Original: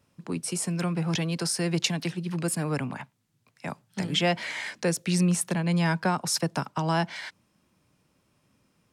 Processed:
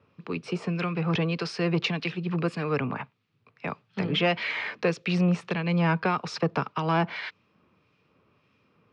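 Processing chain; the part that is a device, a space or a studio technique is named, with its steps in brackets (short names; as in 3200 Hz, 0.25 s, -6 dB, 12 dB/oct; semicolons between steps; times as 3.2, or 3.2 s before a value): guitar amplifier with harmonic tremolo (harmonic tremolo 1.7 Hz, depth 50%, crossover 1700 Hz; soft clip -21 dBFS, distortion -17 dB; speaker cabinet 79–4300 Hz, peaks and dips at 95 Hz +4 dB, 440 Hz +9 dB, 1200 Hz +8 dB, 2500 Hz +7 dB); gain +3 dB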